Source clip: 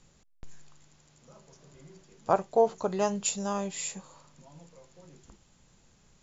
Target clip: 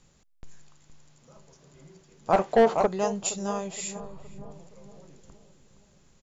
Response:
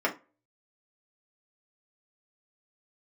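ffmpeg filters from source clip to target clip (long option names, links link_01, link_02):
-filter_complex "[0:a]asettb=1/sr,asplit=3[link_01][link_02][link_03];[link_01]atrim=end=4.004[link_04];[link_02]atrim=start=4:end=4.51,asetpts=PTS-STARTPTS,afade=type=in:duration=0.004:curve=qsin,afade=type=out:start_time=0.506:duration=0.004:curve=qsin,aemphasis=mode=reproduction:type=riaa[link_05];[link_03]atrim=start=4.506[link_06];[link_04][link_05]acrossfade=duration=0.004:curve1=hsin:curve2=qsin[link_07];[link_07][link_06]acrossfade=duration=0.004:curve1=qsin:curve2=hsin,asplit=2[link_08][link_09];[link_09]adelay=467,lowpass=frequency=960:poles=1,volume=-10.5dB,asplit=2[link_10][link_11];[link_11]adelay=467,lowpass=frequency=960:poles=1,volume=0.53,asplit=2[link_12][link_13];[link_13]adelay=467,lowpass=frequency=960:poles=1,volume=0.53,asplit=2[link_14][link_15];[link_15]adelay=467,lowpass=frequency=960:poles=1,volume=0.53,asplit=2[link_16][link_17];[link_17]adelay=467,lowpass=frequency=960:poles=1,volume=0.53,asplit=2[link_18][link_19];[link_19]adelay=467,lowpass=frequency=960:poles=1,volume=0.53[link_20];[link_08][link_10][link_12][link_14][link_16][link_18][link_20]amix=inputs=7:normalize=0,asplit=3[link_21][link_22][link_23];[link_21]afade=type=out:start_time=2.32:duration=0.02[link_24];[link_22]asplit=2[link_25][link_26];[link_26]highpass=frequency=720:poles=1,volume=24dB,asoftclip=type=tanh:threshold=-9.5dB[link_27];[link_25][link_27]amix=inputs=2:normalize=0,lowpass=frequency=1400:poles=1,volume=-6dB,afade=type=in:start_time=2.32:duration=0.02,afade=type=out:start_time=2.85:duration=0.02[link_28];[link_23]afade=type=in:start_time=2.85:duration=0.02[link_29];[link_24][link_28][link_29]amix=inputs=3:normalize=0"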